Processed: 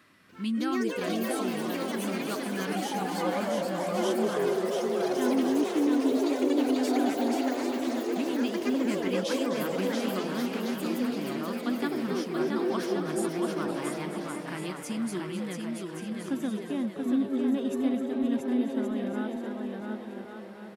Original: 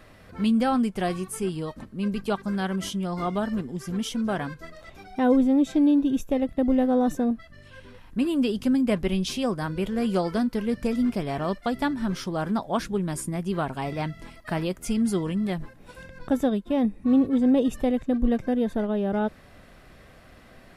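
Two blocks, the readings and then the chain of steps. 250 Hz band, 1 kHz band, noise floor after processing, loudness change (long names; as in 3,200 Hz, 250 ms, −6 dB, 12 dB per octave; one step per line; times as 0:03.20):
−4.5 dB, −2.5 dB, −41 dBFS, −4.0 dB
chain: high-pass filter 210 Hz 12 dB per octave
flat-topped bell 600 Hz −10 dB 1.2 octaves
on a send: bouncing-ball delay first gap 680 ms, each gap 0.65×, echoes 5
on the sum: delay with pitch and tempo change per echo 294 ms, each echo +6 semitones, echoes 3
echo with shifted repeats 259 ms, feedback 50%, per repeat +140 Hz, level −10.5 dB
level −5.5 dB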